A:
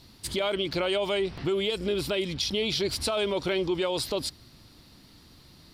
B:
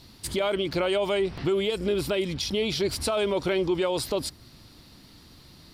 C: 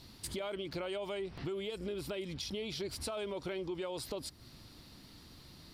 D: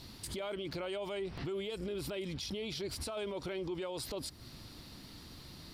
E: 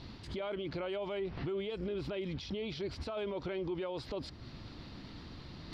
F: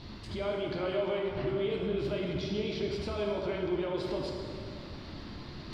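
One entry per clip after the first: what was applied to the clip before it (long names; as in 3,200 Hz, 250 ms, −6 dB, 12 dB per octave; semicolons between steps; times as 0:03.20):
dynamic equaliser 3,800 Hz, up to −5 dB, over −43 dBFS, Q 1; level +2.5 dB
downward compressor 2.5 to 1, threshold −37 dBFS, peak gain reduction 10.5 dB; level −4 dB
brickwall limiter −35.5 dBFS, peak gain reduction 8 dB; level +4 dB
high-frequency loss of the air 210 metres; reversed playback; upward compression, threshold −44 dBFS; reversed playback; level +2 dB
dense smooth reverb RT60 2.7 s, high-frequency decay 0.65×, pre-delay 0 ms, DRR −1.5 dB; level +1.5 dB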